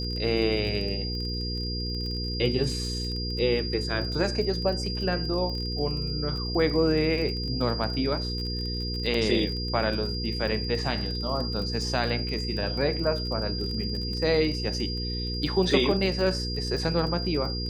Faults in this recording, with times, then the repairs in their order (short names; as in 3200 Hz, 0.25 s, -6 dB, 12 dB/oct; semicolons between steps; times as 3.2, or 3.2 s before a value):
crackle 28/s -33 dBFS
hum 60 Hz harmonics 8 -32 dBFS
tone 4800 Hz -33 dBFS
9.14 gap 3.1 ms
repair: de-click; notch 4800 Hz, Q 30; de-hum 60 Hz, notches 8; interpolate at 9.14, 3.1 ms